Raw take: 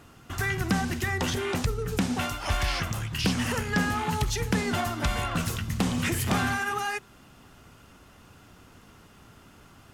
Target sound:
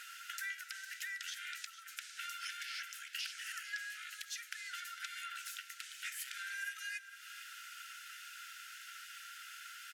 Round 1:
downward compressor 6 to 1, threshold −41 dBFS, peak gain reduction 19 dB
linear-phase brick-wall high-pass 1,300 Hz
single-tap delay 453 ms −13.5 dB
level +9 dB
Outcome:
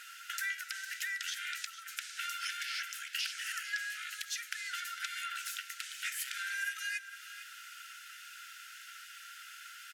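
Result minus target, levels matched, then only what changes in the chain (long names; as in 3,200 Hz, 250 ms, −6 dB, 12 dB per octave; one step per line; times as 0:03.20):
downward compressor: peak gain reduction −5.5 dB
change: downward compressor 6 to 1, threshold −47.5 dBFS, peak gain reduction 24.5 dB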